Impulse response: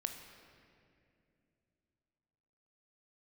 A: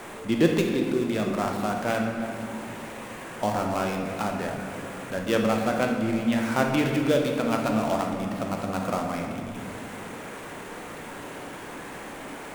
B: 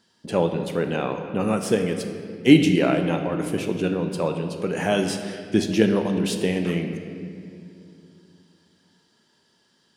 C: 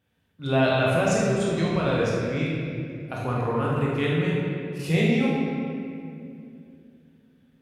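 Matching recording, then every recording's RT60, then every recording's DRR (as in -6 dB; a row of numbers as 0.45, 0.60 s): B; 2.5, 2.6, 2.5 s; 1.0, 5.5, -5.5 dB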